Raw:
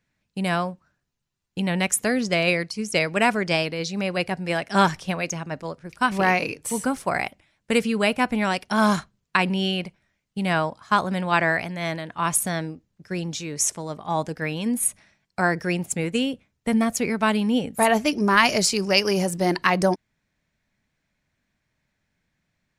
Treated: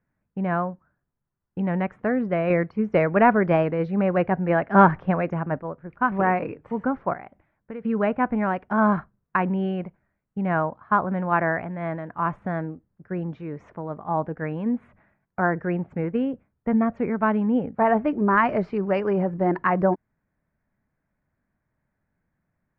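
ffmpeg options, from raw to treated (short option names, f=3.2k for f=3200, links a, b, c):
-filter_complex "[0:a]asettb=1/sr,asplit=3[a][b][c];[a]atrim=end=2.504[d];[b]atrim=start=2.5:end=5.59,asetpts=PTS-STARTPTS,afade=t=in:d=0.004:c=qsin,afade=t=out:st=3.086:d=0.004:c=qsin,acontrast=29[e];[c]atrim=start=5.586[f];[d][e]acrossfade=d=0.004:c1=hsin:c2=qsin[g];[g][f]acrossfade=d=0.004:c1=qsin:c2=hsin,asettb=1/sr,asplit=3[h][i][j];[h]atrim=end=7.134[k];[i]atrim=start=7.13:end=7.85,asetpts=PTS-STARTPTS,afade=t=in:d=0.004:c=qsin,afade=t=out:st=0.716:d=0.004:c=qsin,acompressor=threshold=-41dB:ratio=2:attack=3.2:release=140:knee=1:detection=peak[l];[j]atrim=start=7.846[m];[k][l]acrossfade=d=0.004:c1=hsin:c2=qsin[n];[n][m]acrossfade=d=0.004:c1=qsin:c2=hsin,lowpass=f=1.6k:w=0.5412,lowpass=f=1.6k:w=1.3066"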